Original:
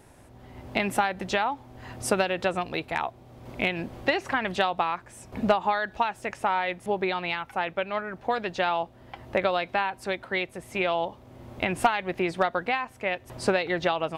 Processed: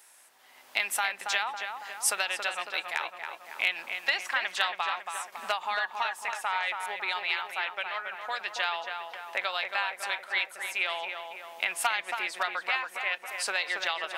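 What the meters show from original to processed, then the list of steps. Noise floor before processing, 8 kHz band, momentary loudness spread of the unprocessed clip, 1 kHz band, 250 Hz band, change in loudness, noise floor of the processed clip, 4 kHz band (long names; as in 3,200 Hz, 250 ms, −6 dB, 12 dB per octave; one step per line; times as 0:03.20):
−52 dBFS, +6.5 dB, 8 LU, −5.5 dB, below −20 dB, −2.5 dB, −56 dBFS, +3.0 dB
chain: high-pass filter 1,300 Hz 12 dB per octave
high-shelf EQ 5,300 Hz +9 dB
on a send: feedback echo with a low-pass in the loop 277 ms, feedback 62%, low-pass 2,300 Hz, level −5 dB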